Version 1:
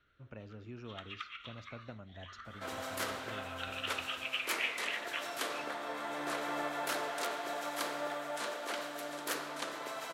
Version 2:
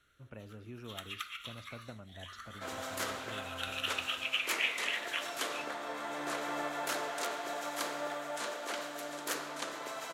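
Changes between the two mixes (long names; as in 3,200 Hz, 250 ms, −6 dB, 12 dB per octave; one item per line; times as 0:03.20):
first sound: remove high-frequency loss of the air 220 metres
second sound: add parametric band 6,800 Hz +4 dB 0.47 octaves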